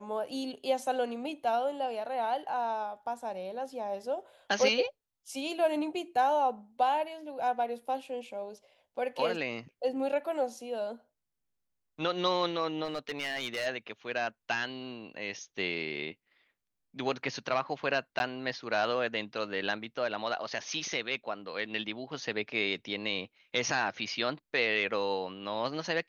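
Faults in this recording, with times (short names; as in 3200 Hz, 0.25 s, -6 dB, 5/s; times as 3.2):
12.84–13.67 clipped -29 dBFS
18.19–18.2 gap 11 ms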